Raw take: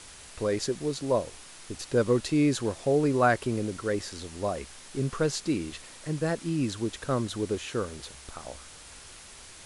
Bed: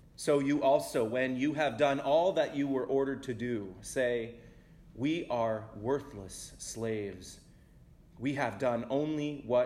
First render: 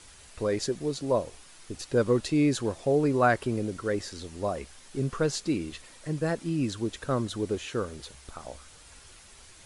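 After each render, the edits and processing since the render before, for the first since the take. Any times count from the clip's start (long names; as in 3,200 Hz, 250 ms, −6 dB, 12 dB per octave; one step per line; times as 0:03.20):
broadband denoise 6 dB, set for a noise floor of −48 dBFS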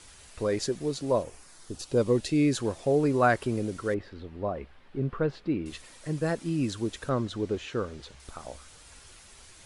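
0:01.22–0:02.52: parametric band 4,400 Hz → 800 Hz −11 dB 0.46 octaves
0:03.94–0:05.66: high-frequency loss of the air 420 metres
0:07.09–0:08.20: high-frequency loss of the air 84 metres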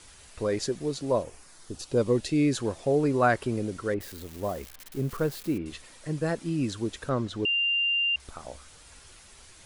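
0:04.00–0:05.58: spike at every zero crossing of −33 dBFS
0:07.45–0:08.16: beep over 2,790 Hz −22.5 dBFS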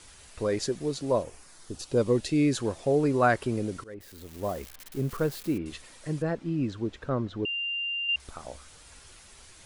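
0:03.84–0:04.49: fade in, from −21.5 dB
0:06.22–0:08.09: head-to-tape spacing loss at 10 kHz 21 dB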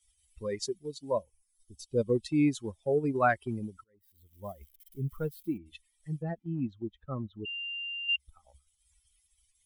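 spectral dynamics exaggerated over time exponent 2
transient designer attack −1 dB, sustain −5 dB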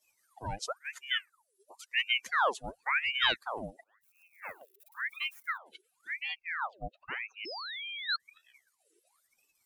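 floating-point word with a short mantissa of 8 bits
ring modulator whose carrier an LFO sweeps 1,500 Hz, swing 75%, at 0.95 Hz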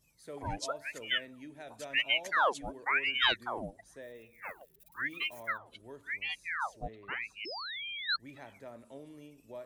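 mix in bed −17.5 dB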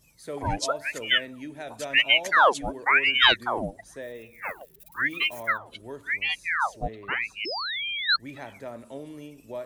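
level +9.5 dB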